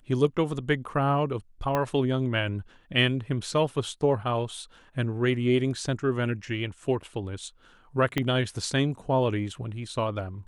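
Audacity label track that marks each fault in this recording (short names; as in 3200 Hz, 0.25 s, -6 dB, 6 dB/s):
1.750000	1.750000	pop -13 dBFS
8.180000	8.180000	pop -12 dBFS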